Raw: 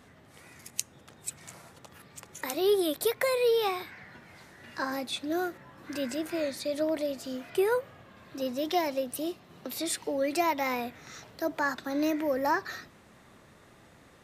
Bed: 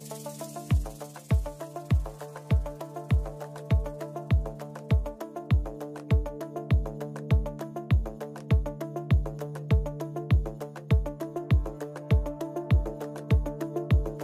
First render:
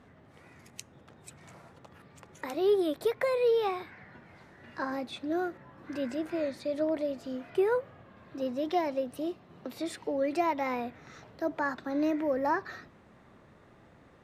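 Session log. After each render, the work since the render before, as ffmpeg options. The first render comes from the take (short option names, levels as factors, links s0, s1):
-af "lowpass=f=1500:p=1"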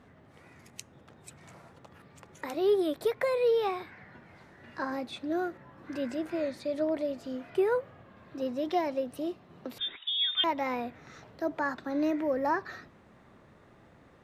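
-filter_complex "[0:a]asettb=1/sr,asplit=3[s0][s1][s2];[s0]atrim=end=9.784[s3];[s1]atrim=start=9.78:end=10.44,asetpts=PTS-STARTPTS,afade=t=in:d=0.004:c=qsin,afade=t=out:st=0.656:d=0.004:c=qsin,lowpass=f=3300:t=q:w=0.5098,lowpass=f=3300:t=q:w=0.6013,lowpass=f=3300:t=q:w=0.9,lowpass=f=3300:t=q:w=2.563,afreqshift=-3900[s4];[s2]atrim=start=10.436[s5];[s3][s4]acrossfade=d=0.004:c1=hsin:c2=qsin[s6];[s6][s5]acrossfade=d=0.004:c1=qsin:c2=hsin"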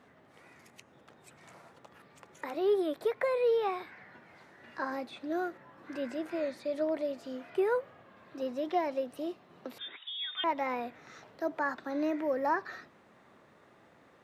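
-filter_complex "[0:a]highpass=f=340:p=1,acrossover=split=2700[s0][s1];[s1]acompressor=threshold=0.00224:ratio=4:attack=1:release=60[s2];[s0][s2]amix=inputs=2:normalize=0"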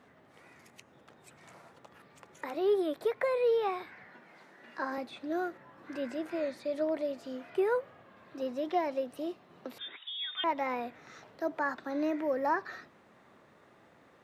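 -filter_complex "[0:a]asettb=1/sr,asplit=3[s0][s1][s2];[s0]atrim=end=4.074[s3];[s1]atrim=start=4.07:end=4.98,asetpts=PTS-STARTPTS,afade=t=in:d=0.004:c=qsin,afade=t=out:st=0.906:d=0.004:c=qsin,highpass=f=160:w=0.5412,highpass=f=160:w=1.3066[s4];[s2]atrim=start=4.976[s5];[s3][s4]acrossfade=d=0.004:c1=hsin:c2=qsin[s6];[s6][s5]acrossfade=d=0.004:c1=qsin:c2=hsin"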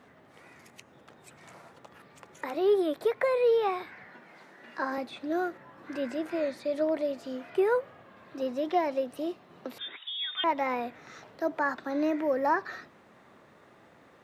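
-af "volume=1.5"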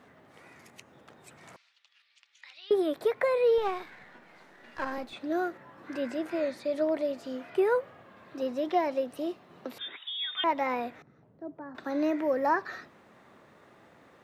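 -filter_complex "[0:a]asettb=1/sr,asplit=3[s0][s1][s2];[s0]atrim=end=1.564[s3];[s1]atrim=start=1.56:end=2.71,asetpts=PTS-STARTPTS,afade=t=in:d=0.004:c=qsin,afade=t=out:st=1.146:d=0.004:c=qsin,asuperpass=centerf=3700:order=4:qfactor=1.3[s4];[s2]atrim=start=2.706[s5];[s3][s4]acrossfade=d=0.004:c1=hsin:c2=qsin[s6];[s6][s5]acrossfade=d=0.004:c1=qsin:c2=hsin,asettb=1/sr,asplit=3[s7][s8][s9];[s7]atrim=end=3.584[s10];[s8]atrim=start=3.58:end=5.13,asetpts=PTS-STARTPTS,afade=t=in:d=0.004:c=qsin,afade=t=out:st=1.546:d=0.004:c=qsin,aeval=exprs='if(lt(val(0),0),0.447*val(0),val(0))':c=same[s11];[s9]atrim=start=5.126[s12];[s10][s11]acrossfade=d=0.004:c1=hsin:c2=qsin[s13];[s13][s12]acrossfade=d=0.004:c1=qsin:c2=hsin,asettb=1/sr,asplit=3[s14][s15][s16];[s14]atrim=end=11.024[s17];[s15]atrim=start=11.02:end=11.75,asetpts=PTS-STARTPTS,afade=t=in:d=0.004:c=qsin,afade=t=out:st=0.726:d=0.004:c=qsin,bandpass=f=130:t=q:w=0.99[s18];[s16]atrim=start=11.746[s19];[s17][s18]acrossfade=d=0.004:c1=hsin:c2=qsin[s20];[s20][s19]acrossfade=d=0.004:c1=qsin:c2=hsin"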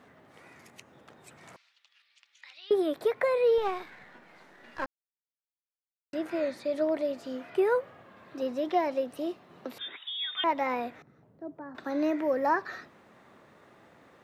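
-filter_complex "[0:a]asplit=3[s0][s1][s2];[s0]atrim=end=4.86,asetpts=PTS-STARTPTS,afade=t=out:st=4.856:d=0.004:c=hsin[s3];[s1]atrim=start=4.86:end=6.13,asetpts=PTS-STARTPTS,volume=0[s4];[s2]atrim=start=6.13,asetpts=PTS-STARTPTS,afade=t=in:d=0.004:c=hsin[s5];[s3][s4][s5]concat=n=3:v=0:a=1"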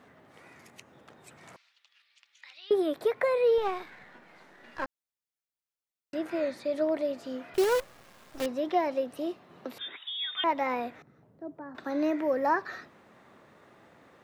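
-filter_complex "[0:a]asettb=1/sr,asplit=3[s0][s1][s2];[s0]atrim=end=7.544[s3];[s1]atrim=start=7.54:end=8.46,asetpts=PTS-STARTPTS,afade=t=in:d=0.004:c=qsin,afade=t=out:st=0.916:d=0.004:c=qsin,acrusher=bits=6:dc=4:mix=0:aa=0.000001[s4];[s2]atrim=start=8.456[s5];[s3][s4]acrossfade=d=0.004:c1=hsin:c2=qsin[s6];[s6][s5]acrossfade=d=0.004:c1=qsin:c2=hsin"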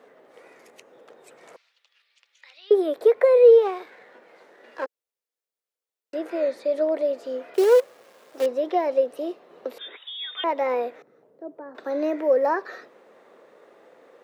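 -af "highpass=300,equalizer=f=480:t=o:w=0.7:g=12.5"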